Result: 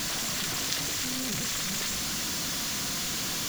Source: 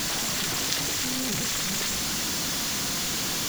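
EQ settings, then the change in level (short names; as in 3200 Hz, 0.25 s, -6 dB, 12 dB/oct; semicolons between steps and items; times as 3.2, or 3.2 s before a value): bell 400 Hz -2.5 dB 0.77 oct; notch 850 Hz, Q 12; -3.0 dB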